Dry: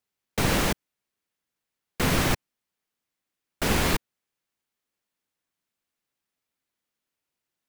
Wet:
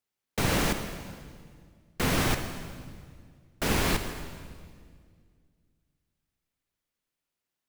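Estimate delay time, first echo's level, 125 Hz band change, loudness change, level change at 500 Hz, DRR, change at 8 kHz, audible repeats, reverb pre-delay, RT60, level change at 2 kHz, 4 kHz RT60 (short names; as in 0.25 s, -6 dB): none, none, -2.0 dB, -3.0 dB, -2.0 dB, 7.5 dB, -2.5 dB, none, 37 ms, 2.0 s, -2.5 dB, 1.7 s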